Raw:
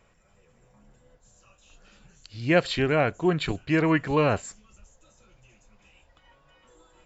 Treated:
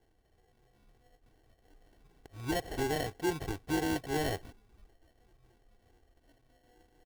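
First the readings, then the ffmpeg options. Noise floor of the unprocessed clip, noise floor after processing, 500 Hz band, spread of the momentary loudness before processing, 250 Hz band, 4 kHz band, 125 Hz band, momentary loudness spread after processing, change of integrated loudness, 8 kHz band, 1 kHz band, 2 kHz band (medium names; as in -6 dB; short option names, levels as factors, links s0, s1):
-63 dBFS, -70 dBFS, -11.0 dB, 8 LU, -9.5 dB, -7.5 dB, -11.5 dB, 9 LU, -10.0 dB, no reading, -8.0 dB, -11.0 dB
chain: -af "acrusher=samples=36:mix=1:aa=0.000001,alimiter=limit=0.158:level=0:latency=1:release=241,aecho=1:1:2.6:0.51,volume=0.376"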